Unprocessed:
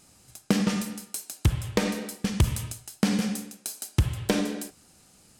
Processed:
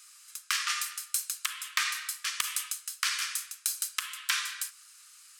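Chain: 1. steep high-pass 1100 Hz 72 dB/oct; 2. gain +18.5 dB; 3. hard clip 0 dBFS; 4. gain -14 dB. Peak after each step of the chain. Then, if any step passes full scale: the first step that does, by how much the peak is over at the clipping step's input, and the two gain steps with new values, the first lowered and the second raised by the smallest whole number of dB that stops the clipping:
-13.0, +5.5, 0.0, -14.0 dBFS; step 2, 5.5 dB; step 2 +12.5 dB, step 4 -8 dB

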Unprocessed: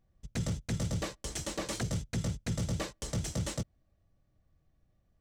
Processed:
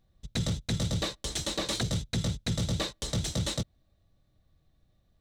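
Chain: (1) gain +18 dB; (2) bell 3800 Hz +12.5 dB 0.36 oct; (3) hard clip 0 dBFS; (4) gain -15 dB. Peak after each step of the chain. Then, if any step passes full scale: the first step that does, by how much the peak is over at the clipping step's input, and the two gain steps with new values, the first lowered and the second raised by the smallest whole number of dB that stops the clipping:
-8.0, -3.0, -3.0, -18.0 dBFS; no overload

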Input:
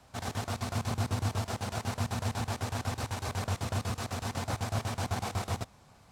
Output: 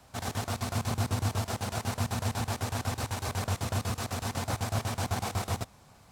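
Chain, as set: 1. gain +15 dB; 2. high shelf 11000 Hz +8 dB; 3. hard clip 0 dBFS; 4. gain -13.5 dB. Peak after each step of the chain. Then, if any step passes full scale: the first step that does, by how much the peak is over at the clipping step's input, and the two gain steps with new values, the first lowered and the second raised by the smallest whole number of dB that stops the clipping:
-2.5, -2.5, -2.5, -16.0 dBFS; no overload

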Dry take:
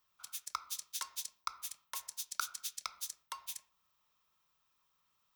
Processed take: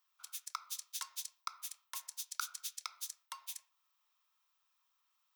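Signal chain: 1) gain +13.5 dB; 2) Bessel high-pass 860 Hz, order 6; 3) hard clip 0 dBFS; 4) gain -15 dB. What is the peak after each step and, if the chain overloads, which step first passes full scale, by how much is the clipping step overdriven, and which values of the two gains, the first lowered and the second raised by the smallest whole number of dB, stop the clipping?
-3.0, -4.0, -4.0, -19.0 dBFS; no overload

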